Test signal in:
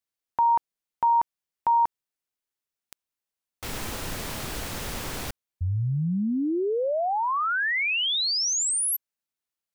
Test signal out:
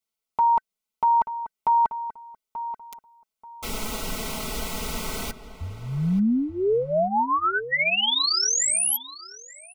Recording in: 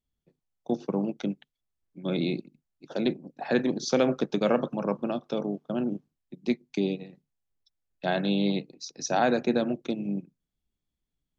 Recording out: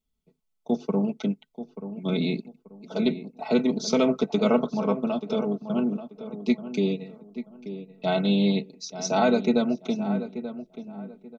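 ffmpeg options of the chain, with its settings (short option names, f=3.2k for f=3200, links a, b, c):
-filter_complex "[0:a]asuperstop=centerf=1700:order=20:qfactor=4.7,aecho=1:1:4.6:0.86,asplit=2[a][b];[b]adelay=884,lowpass=f=2k:p=1,volume=-11.5dB,asplit=2[c][d];[d]adelay=884,lowpass=f=2k:p=1,volume=0.27,asplit=2[e][f];[f]adelay=884,lowpass=f=2k:p=1,volume=0.27[g];[a][c][e][g]amix=inputs=4:normalize=0"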